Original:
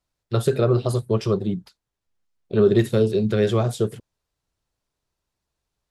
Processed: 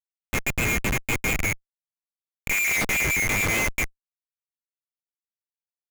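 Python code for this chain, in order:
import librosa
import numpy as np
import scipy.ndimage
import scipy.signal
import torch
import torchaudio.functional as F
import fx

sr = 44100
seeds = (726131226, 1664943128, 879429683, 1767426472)

y = fx.band_swap(x, sr, width_hz=2000)
y = fx.doppler_pass(y, sr, speed_mps=6, closest_m=2.4, pass_at_s=2.57)
y = fx.schmitt(y, sr, flips_db=-31.5)
y = y * librosa.db_to_amplitude(4.5)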